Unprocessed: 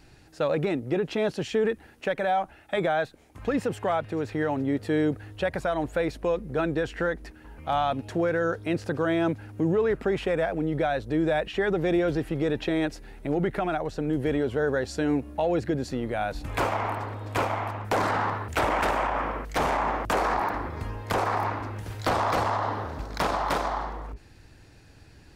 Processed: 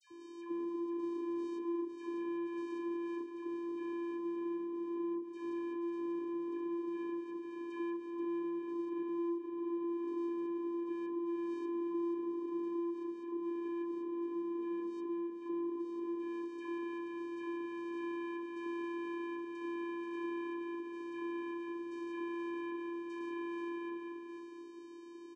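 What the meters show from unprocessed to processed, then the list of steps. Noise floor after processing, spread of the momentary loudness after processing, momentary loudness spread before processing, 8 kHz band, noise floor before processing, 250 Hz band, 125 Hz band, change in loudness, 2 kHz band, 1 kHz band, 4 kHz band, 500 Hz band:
-48 dBFS, 4 LU, 6 LU, under -20 dB, -53 dBFS, -7.0 dB, under -35 dB, -12.0 dB, -19.5 dB, -19.5 dB, under -20 dB, -14.0 dB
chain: stepped spectrum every 0.2 s; treble ducked by the level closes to 2700 Hz, closed at -26 dBFS; bell 330 Hz +8.5 dB 0.31 oct; compressor, threshold -42 dBFS, peak gain reduction 23.5 dB; on a send: echo 0.481 s -8.5 dB; on the sum: soft clip -38 dBFS, distortion -17 dB; vocoder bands 4, square 341 Hz; dispersion lows, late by 0.108 s, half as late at 1300 Hz; ending taper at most 130 dB/s; gain +6.5 dB

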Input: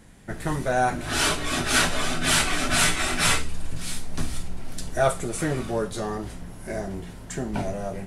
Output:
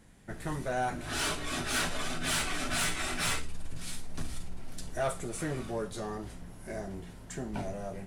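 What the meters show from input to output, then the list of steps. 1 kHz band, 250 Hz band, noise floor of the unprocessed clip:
-9.0 dB, -8.5 dB, -40 dBFS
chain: soft clip -16 dBFS, distortion -17 dB; gain -7.5 dB

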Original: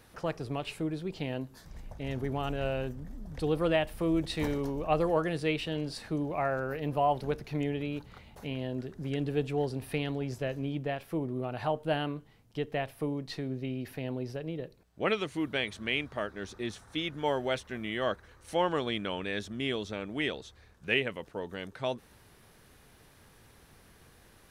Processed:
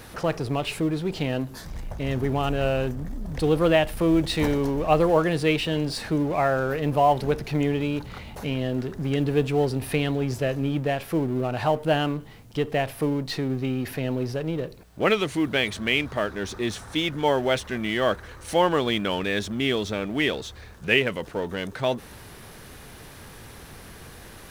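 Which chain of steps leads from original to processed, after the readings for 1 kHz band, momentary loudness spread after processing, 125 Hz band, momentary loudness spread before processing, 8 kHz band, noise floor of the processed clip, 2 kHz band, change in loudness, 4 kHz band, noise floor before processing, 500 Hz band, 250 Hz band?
+8.0 dB, 17 LU, +8.5 dB, 10 LU, +11.5 dB, -44 dBFS, +8.0 dB, +8.0 dB, +8.5 dB, -59 dBFS, +8.0 dB, +8.5 dB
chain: G.711 law mismatch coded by mu; gain +7 dB

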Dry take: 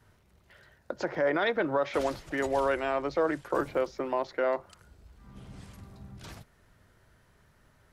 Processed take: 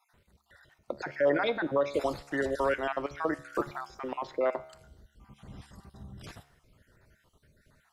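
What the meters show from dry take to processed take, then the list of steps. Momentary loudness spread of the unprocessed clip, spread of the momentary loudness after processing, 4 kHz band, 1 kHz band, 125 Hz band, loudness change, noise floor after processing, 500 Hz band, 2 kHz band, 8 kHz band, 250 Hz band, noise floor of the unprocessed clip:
21 LU, 21 LU, -1.5 dB, -2.0 dB, -1.0 dB, -1.5 dB, -71 dBFS, -1.5 dB, -1.5 dB, n/a, -1.0 dB, -64 dBFS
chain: random spectral dropouts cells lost 41%; resonator 71 Hz, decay 0.77 s, harmonics all, mix 50%; gain +5.5 dB

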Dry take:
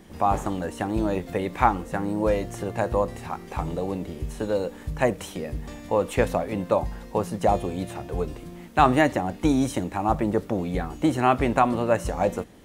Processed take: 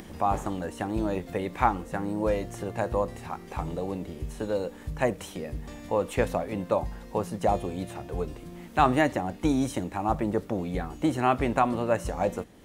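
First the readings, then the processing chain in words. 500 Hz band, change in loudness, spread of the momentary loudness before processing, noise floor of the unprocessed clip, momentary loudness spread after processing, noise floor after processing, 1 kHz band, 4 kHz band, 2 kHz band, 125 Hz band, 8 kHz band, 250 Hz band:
-3.5 dB, -3.5 dB, 11 LU, -43 dBFS, 11 LU, -46 dBFS, -3.5 dB, -3.5 dB, -3.5 dB, -3.5 dB, -3.5 dB, -3.5 dB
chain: upward compressor, threshold -33 dBFS; gain -3.5 dB

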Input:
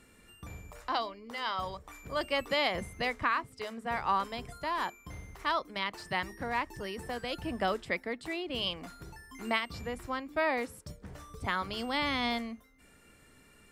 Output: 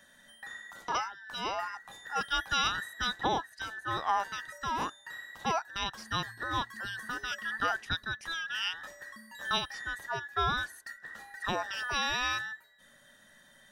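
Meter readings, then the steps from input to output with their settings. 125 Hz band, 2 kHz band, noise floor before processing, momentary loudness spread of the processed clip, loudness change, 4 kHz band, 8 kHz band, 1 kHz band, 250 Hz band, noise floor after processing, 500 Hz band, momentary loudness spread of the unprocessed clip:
0.0 dB, +2.0 dB, -60 dBFS, 14 LU, +0.5 dB, +2.5 dB, +8.0 dB, +1.0 dB, -6.0 dB, -60 dBFS, -6.0 dB, 17 LU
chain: band inversion scrambler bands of 2000 Hz

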